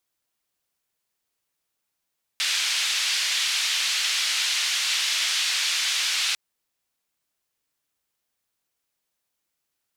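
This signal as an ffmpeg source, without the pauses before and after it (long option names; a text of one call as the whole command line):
ffmpeg -f lavfi -i "anoisesrc=color=white:duration=3.95:sample_rate=44100:seed=1,highpass=frequency=2600,lowpass=frequency=4100,volume=-9dB" out.wav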